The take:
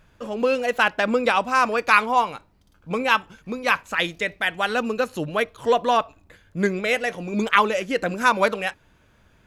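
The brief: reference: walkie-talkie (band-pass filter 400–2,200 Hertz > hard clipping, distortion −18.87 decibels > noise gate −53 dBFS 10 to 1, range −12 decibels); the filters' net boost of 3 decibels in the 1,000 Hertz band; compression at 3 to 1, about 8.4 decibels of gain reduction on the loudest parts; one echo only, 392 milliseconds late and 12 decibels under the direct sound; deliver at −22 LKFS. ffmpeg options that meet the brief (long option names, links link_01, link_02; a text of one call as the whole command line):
ffmpeg -i in.wav -af "equalizer=frequency=1000:width_type=o:gain=4,acompressor=threshold=-20dB:ratio=3,highpass=400,lowpass=2200,aecho=1:1:392:0.251,asoftclip=type=hard:threshold=-15.5dB,agate=range=-12dB:threshold=-53dB:ratio=10,volume=5dB" out.wav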